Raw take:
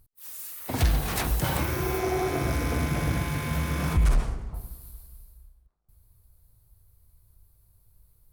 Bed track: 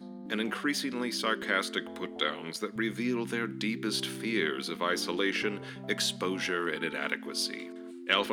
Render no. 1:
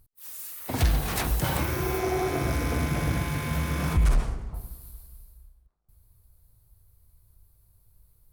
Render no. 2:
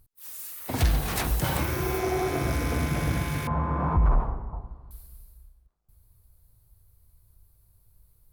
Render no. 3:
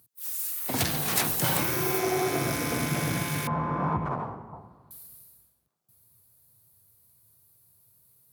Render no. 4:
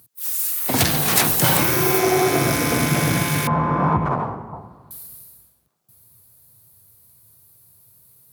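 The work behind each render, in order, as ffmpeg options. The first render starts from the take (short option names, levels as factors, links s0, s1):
-af anull
-filter_complex "[0:a]asettb=1/sr,asplit=3[s0][s1][s2];[s0]atrim=end=3.474[s3];[s1]atrim=start=3.47:end=4.91,asetpts=PTS-STARTPTS,afade=t=in:d=0.004:c=qsin,afade=t=out:st=1.436:d=0.004:c=qsin,lowpass=f=980:t=q:w=3.1[s4];[s2]atrim=start=4.906[s5];[s3][s4]acrossfade=d=0.004:c1=hsin:c2=qsin[s6];[s6][s5]acrossfade=d=0.004:c1=qsin:c2=hsin"
-af "highpass=f=120:w=0.5412,highpass=f=120:w=1.3066,highshelf=f=3600:g=7.5"
-af "volume=2.82,alimiter=limit=0.794:level=0:latency=1"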